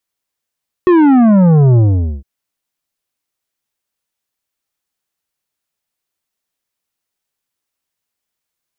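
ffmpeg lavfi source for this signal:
ffmpeg -f lavfi -i "aevalsrc='0.473*clip((1.36-t)/0.46,0,1)*tanh(3.16*sin(2*PI*370*1.36/log(65/370)*(exp(log(65/370)*t/1.36)-1)))/tanh(3.16)':duration=1.36:sample_rate=44100" out.wav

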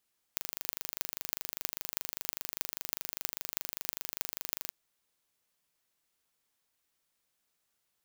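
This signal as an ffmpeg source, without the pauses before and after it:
ffmpeg -f lavfi -i "aevalsrc='0.668*eq(mod(n,1764),0)*(0.5+0.5*eq(mod(n,14112),0))':duration=4.36:sample_rate=44100" out.wav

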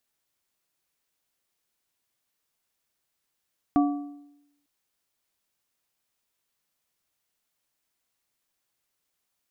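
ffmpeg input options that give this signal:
ffmpeg -f lavfi -i "aevalsrc='0.158*pow(10,-3*t/0.88)*sin(2*PI*288*t)+0.075*pow(10,-3*t/0.668)*sin(2*PI*720*t)+0.0355*pow(10,-3*t/0.581)*sin(2*PI*1152*t)':duration=0.9:sample_rate=44100" out.wav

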